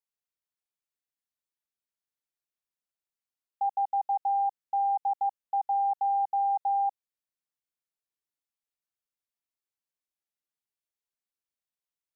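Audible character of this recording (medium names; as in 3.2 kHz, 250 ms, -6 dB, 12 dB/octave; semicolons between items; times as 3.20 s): noise floor -94 dBFS; spectral tilt +18.5 dB/octave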